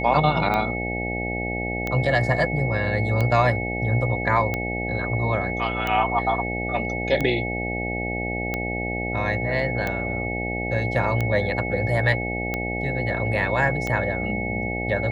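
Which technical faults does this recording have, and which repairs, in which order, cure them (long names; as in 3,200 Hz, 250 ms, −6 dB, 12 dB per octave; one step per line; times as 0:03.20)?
mains buzz 60 Hz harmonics 14 −29 dBFS
scratch tick 45 rpm −12 dBFS
whistle 2,200 Hz −29 dBFS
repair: click removal
hum removal 60 Hz, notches 14
notch filter 2,200 Hz, Q 30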